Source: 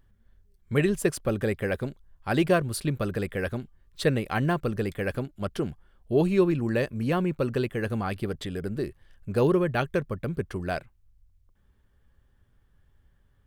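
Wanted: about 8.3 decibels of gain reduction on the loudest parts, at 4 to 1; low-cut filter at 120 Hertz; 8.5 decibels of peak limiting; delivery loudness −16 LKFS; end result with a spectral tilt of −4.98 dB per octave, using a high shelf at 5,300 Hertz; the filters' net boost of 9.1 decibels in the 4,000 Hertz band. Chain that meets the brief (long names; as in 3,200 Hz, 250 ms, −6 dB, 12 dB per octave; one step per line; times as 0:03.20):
high-pass filter 120 Hz
parametric band 4,000 Hz +8 dB
high-shelf EQ 5,300 Hz +8 dB
downward compressor 4 to 1, threshold −27 dBFS
level +18 dB
brickwall limiter −3.5 dBFS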